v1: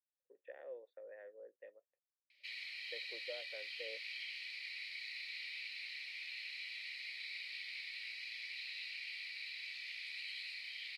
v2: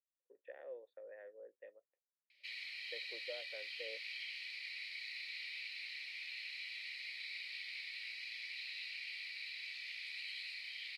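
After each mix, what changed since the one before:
nothing changed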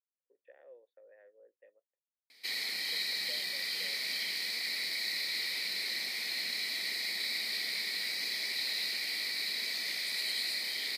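speech −6.0 dB
background: remove resonant band-pass 2,700 Hz, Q 5.8

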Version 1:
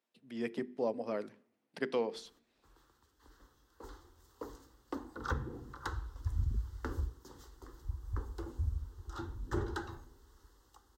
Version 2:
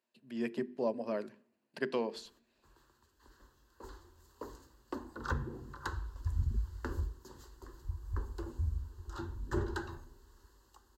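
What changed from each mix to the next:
master: add EQ curve with evenly spaced ripples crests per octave 1.4, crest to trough 6 dB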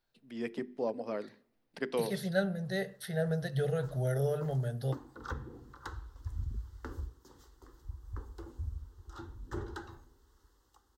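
second voice: unmuted
background −4.0 dB
master: remove EQ curve with evenly spaced ripples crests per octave 1.4, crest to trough 6 dB

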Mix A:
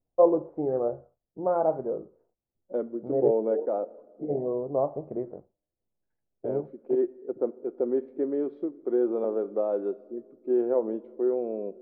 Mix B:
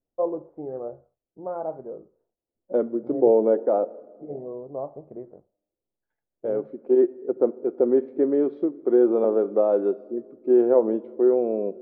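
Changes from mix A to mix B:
first voice −6.0 dB
second voice +7.0 dB

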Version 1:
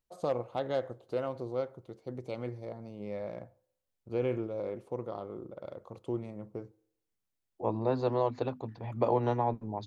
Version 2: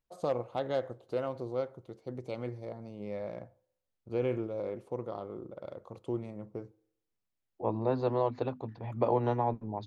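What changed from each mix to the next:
second voice: add high-frequency loss of the air 94 metres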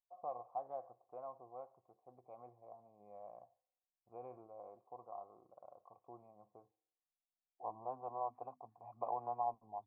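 master: add formant resonators in series a

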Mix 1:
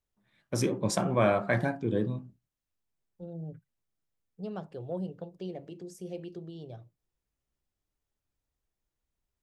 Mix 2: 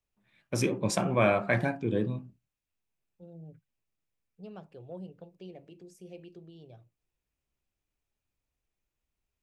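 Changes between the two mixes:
second voice −7.5 dB
master: add parametric band 2,500 Hz +8 dB 0.38 octaves

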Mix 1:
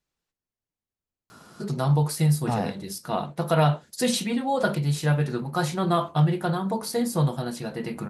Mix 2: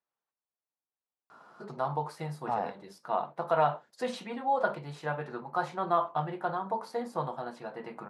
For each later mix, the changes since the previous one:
master: add resonant band-pass 920 Hz, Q 1.4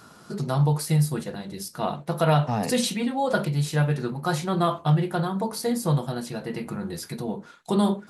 first voice: entry −1.30 s
master: remove resonant band-pass 920 Hz, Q 1.4

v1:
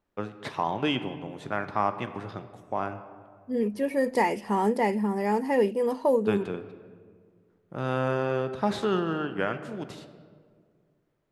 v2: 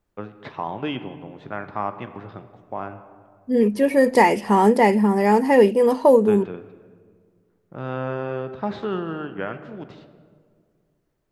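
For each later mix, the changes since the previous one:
first voice: add high-frequency loss of the air 210 metres
second voice +9.0 dB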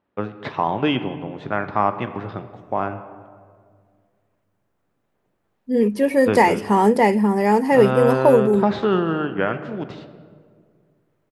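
first voice +7.5 dB
second voice: entry +2.20 s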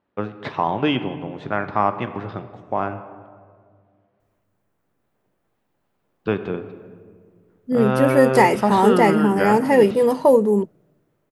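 second voice: entry +2.00 s
master: add high-shelf EQ 11,000 Hz +6.5 dB

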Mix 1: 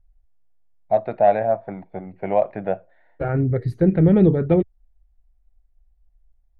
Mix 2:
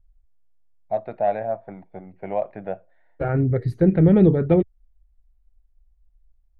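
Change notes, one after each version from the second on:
first voice −6.0 dB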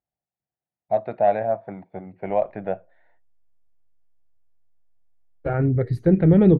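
first voice +3.0 dB
second voice: entry +2.25 s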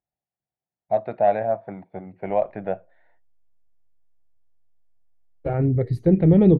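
second voice: add parametric band 1,500 Hz −9.5 dB 0.6 octaves

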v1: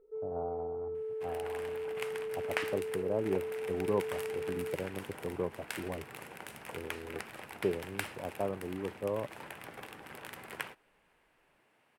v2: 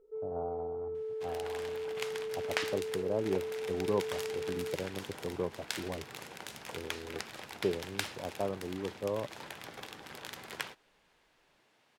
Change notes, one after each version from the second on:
master: add flat-topped bell 4,900 Hz +9.5 dB 1.3 octaves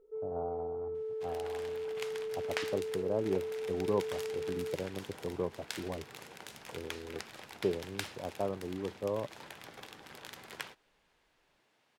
second sound −3.5 dB

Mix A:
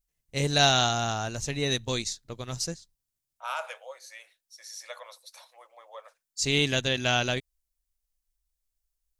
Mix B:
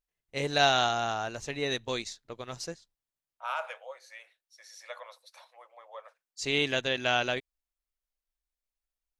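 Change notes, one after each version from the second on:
master: add bass and treble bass −11 dB, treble −11 dB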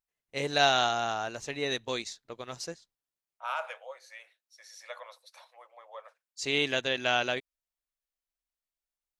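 master: add low-shelf EQ 87 Hz −11.5 dB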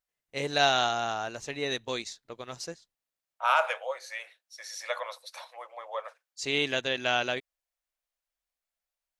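second voice +10.0 dB

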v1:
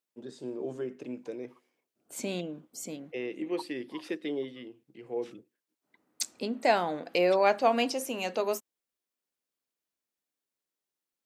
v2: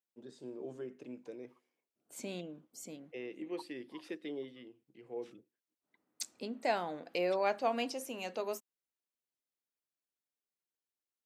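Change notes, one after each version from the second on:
first voice −8.0 dB
second voice −8.0 dB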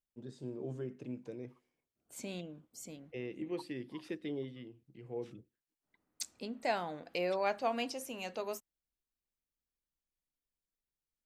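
second voice: add low-shelf EQ 270 Hz −10.5 dB
master: remove high-pass filter 290 Hz 12 dB per octave

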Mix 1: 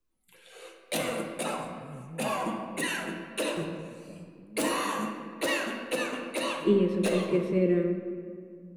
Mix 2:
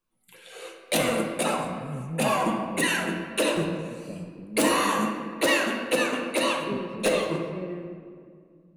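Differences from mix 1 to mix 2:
first voice +9.5 dB
second voice −11.0 dB
background +6.5 dB

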